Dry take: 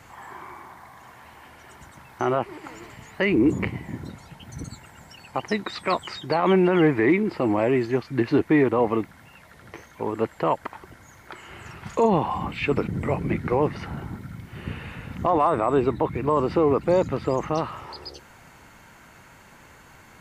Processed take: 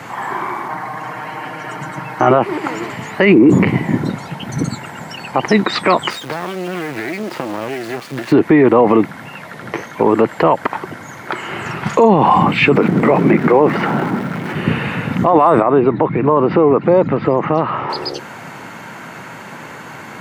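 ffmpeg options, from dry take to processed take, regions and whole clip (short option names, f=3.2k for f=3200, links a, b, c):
-filter_complex "[0:a]asettb=1/sr,asplit=3[a][b][c];[a]atrim=end=0.684[d];[b]atrim=start=0.68:end=2.31,asetpts=PTS-STARTPTS,afade=t=in:d=0.004:c=qsin,afade=t=out:st=1.626:d=0.004:c=qsin,highshelf=f=4.1k:g=-5.5,bandreject=f=3.6k:w=9.7,aecho=1:1:6.5:0.94,atrim=end_sample=71883[e];[c]atrim=start=2.306[f];[d][e]acrossfade=d=0.004:c1=hsin:c2=qsin[g];[g][f]acrossfade=d=0.004:c1=qsin:c2=hsin,asettb=1/sr,asplit=3[h][i][j];[h]atrim=end=6.104[k];[i]atrim=start=6.1:end=8.32,asetpts=PTS-STARTPTS,afade=t=in:d=0.004:c=qsin,afade=t=out:st=2.216:d=0.004:c=qsin,lowshelf=f=480:g=-10,acompressor=threshold=-33dB:ratio=16:attack=3.2:release=140:knee=1:detection=peak,acrusher=bits=5:dc=4:mix=0:aa=0.000001[l];[j]atrim=start=8.316[m];[k][l]acrossfade=d=0.004:c1=hsin:c2=qsin[n];[n][m]acrossfade=d=0.004:c1=qsin:c2=hsin,asettb=1/sr,asplit=3[o][p][q];[o]atrim=end=12.754[r];[p]atrim=start=12.75:end=14.55,asetpts=PTS-STARTPTS,afade=t=in:d=0.004:c=qsin,afade=t=out:st=1.796:d=0.004:c=qsin,aeval=exprs='val(0)+0.5*0.0168*sgn(val(0))':c=same,acrossover=split=2600[s][t];[t]acompressor=threshold=-53dB:ratio=4:attack=1:release=60[u];[s][u]amix=inputs=2:normalize=0,highpass=210[v];[q]atrim=start=14.546[w];[r][v]acrossfade=d=0.004:c1=hsin:c2=qsin[x];[x][w]acrossfade=d=0.004:c1=qsin:c2=hsin,asettb=1/sr,asplit=3[y][z][aa];[y]atrim=end=15.624[ab];[z]atrim=start=15.62:end=17.9,asetpts=PTS-STARTPTS,afade=t=in:d=0.004:c=qsin,afade=t=out:st=2.276:d=0.004:c=qsin,lowpass=2.7k,acompressor=threshold=-34dB:ratio=2:attack=3.2:release=140:knee=1:detection=peak[ac];[aa]atrim=start=17.896[ad];[ab][ac]acrossfade=d=0.004:c1=hsin:c2=qsin[ae];[ae][ad]acrossfade=d=0.004:c1=qsin:c2=hsin,highpass=f=130:w=0.5412,highpass=f=130:w=1.3066,highshelf=f=4k:g=-9,alimiter=level_in=20dB:limit=-1dB:release=50:level=0:latency=1,volume=-1dB"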